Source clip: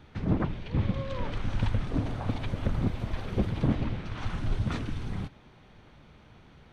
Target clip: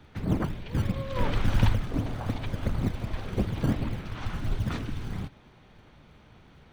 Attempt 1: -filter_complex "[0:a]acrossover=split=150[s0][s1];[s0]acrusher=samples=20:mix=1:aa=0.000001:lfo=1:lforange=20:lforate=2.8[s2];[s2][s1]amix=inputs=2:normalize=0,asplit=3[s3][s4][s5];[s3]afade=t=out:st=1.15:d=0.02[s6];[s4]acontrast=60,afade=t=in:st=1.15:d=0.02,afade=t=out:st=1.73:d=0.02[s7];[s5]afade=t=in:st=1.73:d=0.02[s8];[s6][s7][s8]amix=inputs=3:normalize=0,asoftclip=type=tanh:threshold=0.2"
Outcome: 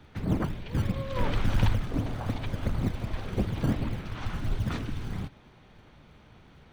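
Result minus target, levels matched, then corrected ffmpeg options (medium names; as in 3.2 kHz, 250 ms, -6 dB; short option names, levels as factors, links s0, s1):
saturation: distortion +21 dB
-filter_complex "[0:a]acrossover=split=150[s0][s1];[s0]acrusher=samples=20:mix=1:aa=0.000001:lfo=1:lforange=20:lforate=2.8[s2];[s2][s1]amix=inputs=2:normalize=0,asplit=3[s3][s4][s5];[s3]afade=t=out:st=1.15:d=0.02[s6];[s4]acontrast=60,afade=t=in:st=1.15:d=0.02,afade=t=out:st=1.73:d=0.02[s7];[s5]afade=t=in:st=1.73:d=0.02[s8];[s6][s7][s8]amix=inputs=3:normalize=0,asoftclip=type=tanh:threshold=0.75"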